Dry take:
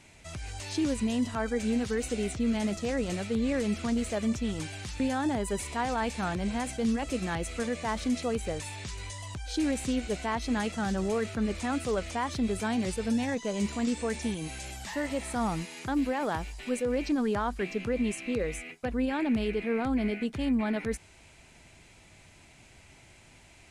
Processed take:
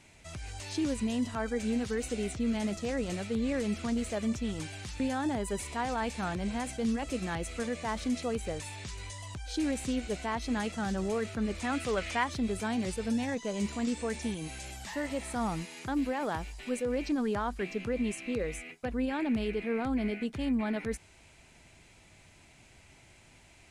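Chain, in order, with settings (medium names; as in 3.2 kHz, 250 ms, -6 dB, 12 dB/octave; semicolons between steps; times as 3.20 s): 11.61–12.23 s: peaking EQ 2.2 kHz +3.5 dB -> +10.5 dB 1.9 oct; trim -2.5 dB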